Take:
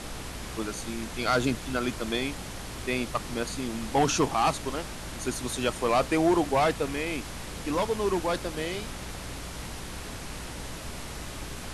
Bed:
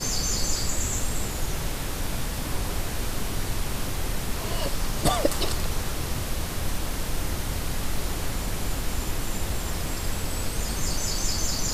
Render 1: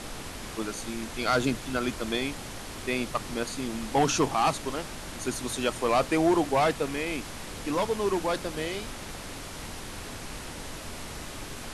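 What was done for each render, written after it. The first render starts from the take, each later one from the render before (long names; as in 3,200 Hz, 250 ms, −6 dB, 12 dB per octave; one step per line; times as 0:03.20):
mains-hum notches 60/120/180 Hz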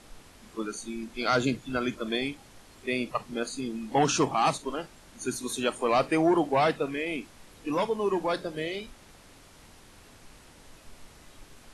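noise reduction from a noise print 14 dB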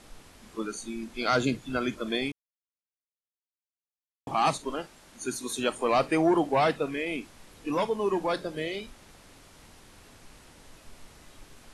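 0:02.32–0:04.27: silence
0:04.82–0:05.59: low-shelf EQ 160 Hz −7 dB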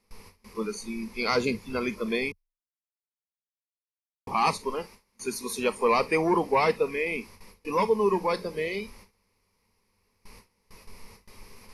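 noise gate with hold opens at −40 dBFS
EQ curve with evenly spaced ripples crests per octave 0.86, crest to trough 12 dB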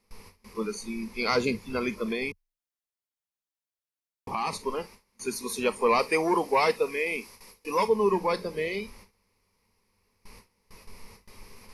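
0:02.10–0:04.53: downward compressor, threshold −25 dBFS
0:05.99–0:07.88: bass and treble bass −8 dB, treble +6 dB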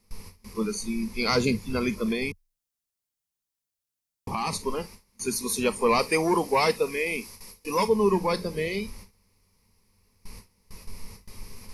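bass and treble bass +9 dB, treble +7 dB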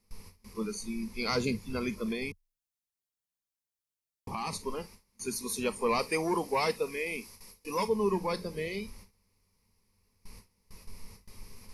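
level −6.5 dB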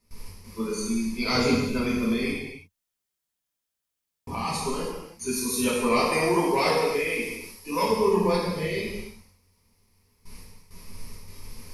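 reverb whose tail is shaped and stops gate 370 ms falling, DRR −6.5 dB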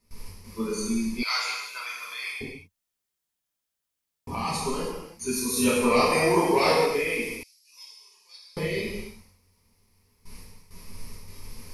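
0:01.23–0:02.41: high-pass filter 970 Hz 24 dB per octave
0:05.53–0:06.86: double-tracking delay 33 ms −3 dB
0:07.43–0:08.57: four-pole ladder band-pass 6,000 Hz, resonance 30%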